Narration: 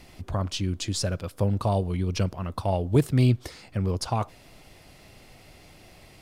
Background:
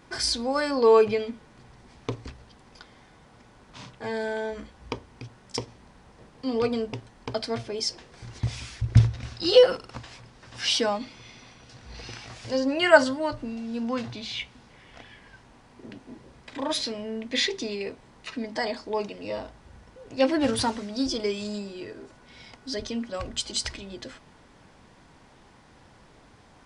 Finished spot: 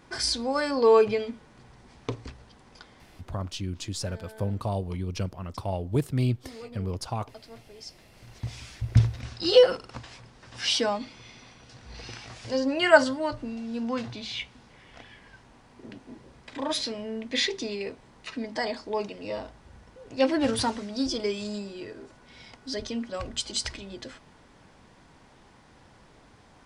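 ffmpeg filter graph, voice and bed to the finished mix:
ffmpeg -i stem1.wav -i stem2.wav -filter_complex "[0:a]adelay=3000,volume=-5dB[link_01];[1:a]volume=15.5dB,afade=type=out:start_time=2.91:duration=0.76:silence=0.149624,afade=type=in:start_time=7.77:duration=1.5:silence=0.149624[link_02];[link_01][link_02]amix=inputs=2:normalize=0" out.wav

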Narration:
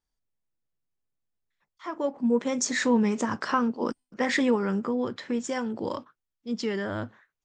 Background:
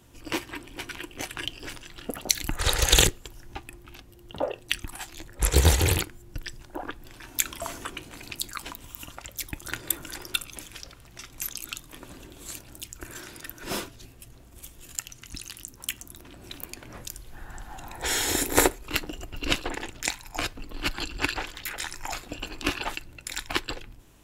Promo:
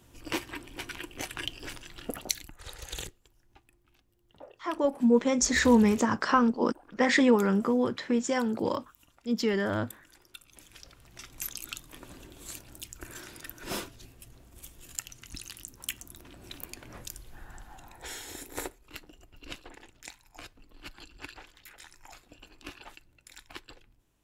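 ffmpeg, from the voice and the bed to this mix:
ffmpeg -i stem1.wav -i stem2.wav -filter_complex "[0:a]adelay=2800,volume=2dB[link_01];[1:a]volume=14.5dB,afade=type=out:start_time=2.14:duration=0.36:silence=0.125893,afade=type=in:start_time=10.4:duration=0.84:silence=0.141254,afade=type=out:start_time=17.2:duration=1.03:silence=0.211349[link_02];[link_01][link_02]amix=inputs=2:normalize=0" out.wav

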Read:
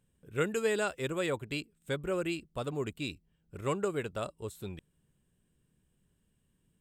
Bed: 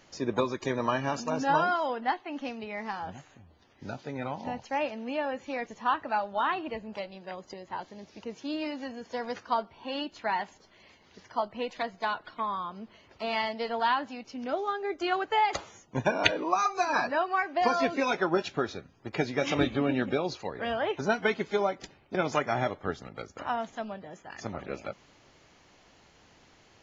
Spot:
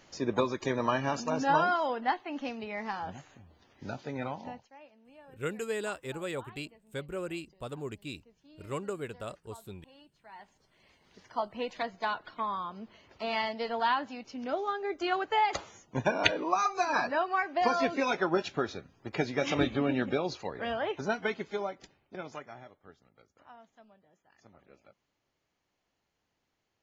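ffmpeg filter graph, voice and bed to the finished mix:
ffmpeg -i stem1.wav -i stem2.wav -filter_complex "[0:a]adelay=5050,volume=-4dB[link_01];[1:a]volume=21.5dB,afade=type=out:start_time=4.22:duration=0.48:silence=0.0707946,afade=type=in:start_time=10.29:duration=1.27:silence=0.0794328,afade=type=out:start_time=20.48:duration=2.16:silence=0.0944061[link_02];[link_01][link_02]amix=inputs=2:normalize=0" out.wav

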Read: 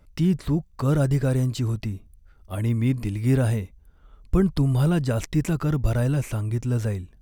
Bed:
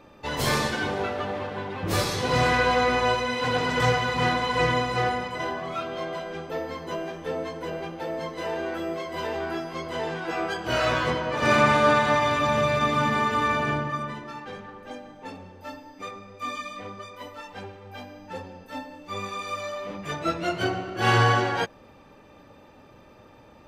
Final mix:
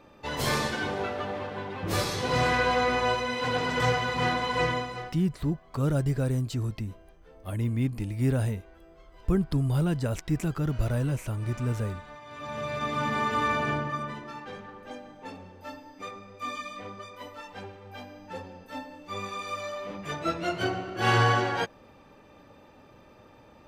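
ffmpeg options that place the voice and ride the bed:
ffmpeg -i stem1.wav -i stem2.wav -filter_complex "[0:a]adelay=4950,volume=-5dB[link_01];[1:a]volume=19dB,afade=type=out:start_time=4.61:duration=0.54:silence=0.0841395,afade=type=in:start_time=12.26:duration=1.12:silence=0.0794328[link_02];[link_01][link_02]amix=inputs=2:normalize=0" out.wav

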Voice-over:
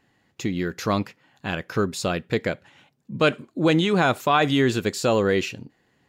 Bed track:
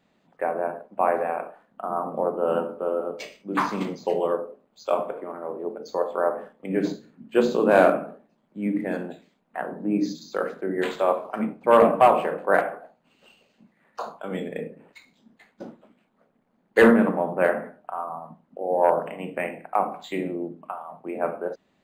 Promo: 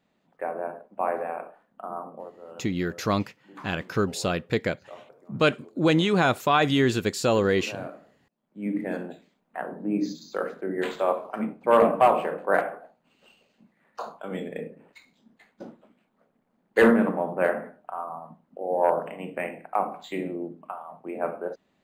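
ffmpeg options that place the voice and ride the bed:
ffmpeg -i stem1.wav -i stem2.wav -filter_complex "[0:a]adelay=2200,volume=-1.5dB[link_01];[1:a]volume=13.5dB,afade=type=out:start_time=1.81:duration=0.51:silence=0.158489,afade=type=in:start_time=8.31:duration=0.42:silence=0.11885[link_02];[link_01][link_02]amix=inputs=2:normalize=0" out.wav

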